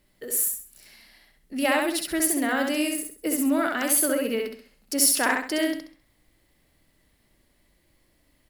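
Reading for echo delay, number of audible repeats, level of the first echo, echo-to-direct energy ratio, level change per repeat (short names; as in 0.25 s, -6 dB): 66 ms, 4, -3.0 dB, -2.5 dB, -9.5 dB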